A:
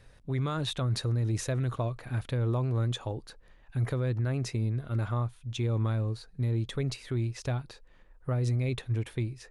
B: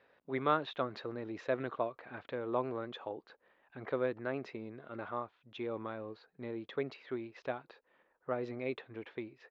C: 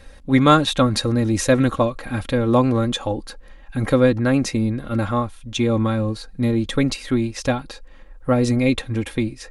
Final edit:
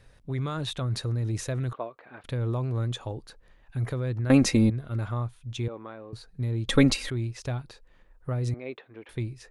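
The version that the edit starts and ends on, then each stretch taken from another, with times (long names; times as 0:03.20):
A
0:01.73–0:02.24: punch in from B
0:04.30–0:04.70: punch in from C
0:05.68–0:06.13: punch in from B
0:06.68–0:07.10: punch in from C
0:08.54–0:09.09: punch in from B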